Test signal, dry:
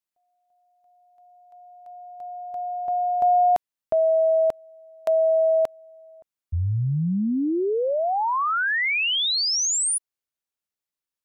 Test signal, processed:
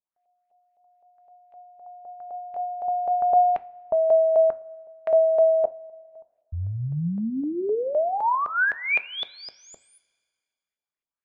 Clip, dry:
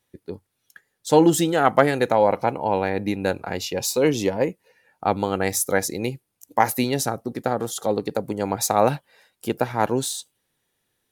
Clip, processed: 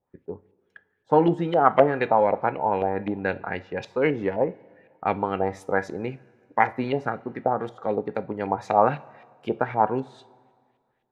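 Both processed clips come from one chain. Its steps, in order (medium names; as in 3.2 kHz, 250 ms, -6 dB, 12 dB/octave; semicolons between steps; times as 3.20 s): LFO low-pass saw up 3.9 Hz 600–2800 Hz; two-slope reverb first 0.28 s, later 1.9 s, from -18 dB, DRR 12 dB; trim -4.5 dB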